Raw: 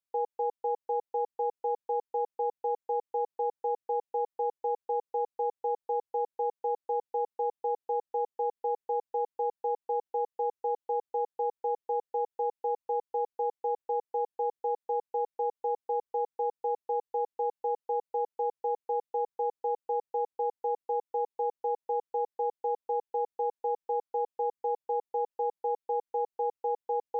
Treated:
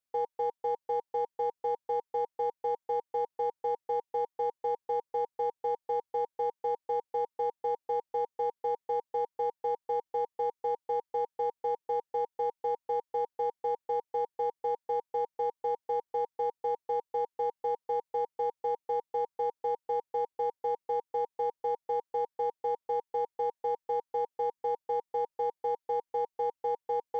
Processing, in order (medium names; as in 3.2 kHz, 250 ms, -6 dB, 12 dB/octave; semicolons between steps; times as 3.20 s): band-stop 940 Hz, Q 22; in parallel at -11 dB: hard clipper -37.5 dBFS, distortion -6 dB; on the sum: trim -1 dB